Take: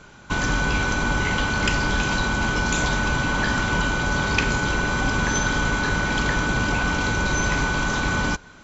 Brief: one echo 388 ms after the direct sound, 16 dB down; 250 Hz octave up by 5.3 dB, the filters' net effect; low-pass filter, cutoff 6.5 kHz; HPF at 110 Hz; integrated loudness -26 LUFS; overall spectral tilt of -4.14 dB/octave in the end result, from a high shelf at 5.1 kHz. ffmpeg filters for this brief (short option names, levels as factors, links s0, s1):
-af "highpass=110,lowpass=6500,equalizer=f=250:t=o:g=7,highshelf=f=5100:g=-9,aecho=1:1:388:0.158,volume=0.631"